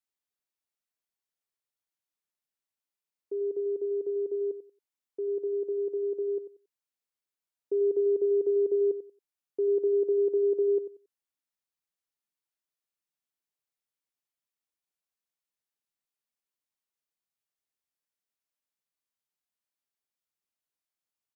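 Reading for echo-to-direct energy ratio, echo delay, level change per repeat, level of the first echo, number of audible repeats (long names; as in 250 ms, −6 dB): −11.5 dB, 92 ms, −13.5 dB, −11.5 dB, 2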